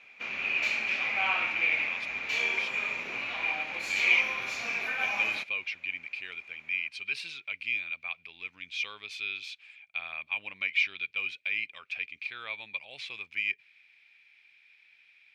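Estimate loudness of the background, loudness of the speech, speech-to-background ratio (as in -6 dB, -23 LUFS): -29.0 LUFS, -33.5 LUFS, -4.5 dB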